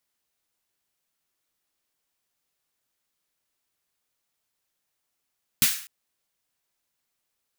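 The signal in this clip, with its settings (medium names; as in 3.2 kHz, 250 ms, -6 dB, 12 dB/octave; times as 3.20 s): snare drum length 0.25 s, tones 160 Hz, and 240 Hz, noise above 1.4 kHz, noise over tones 8.5 dB, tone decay 0.10 s, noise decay 0.48 s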